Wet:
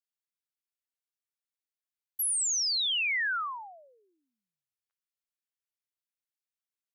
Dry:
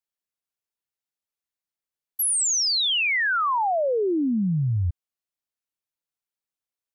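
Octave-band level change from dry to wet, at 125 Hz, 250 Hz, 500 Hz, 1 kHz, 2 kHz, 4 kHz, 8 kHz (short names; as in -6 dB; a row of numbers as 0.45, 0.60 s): under -40 dB, under -40 dB, -35.0 dB, -13.5 dB, -6.5 dB, -6.0 dB, -6.0 dB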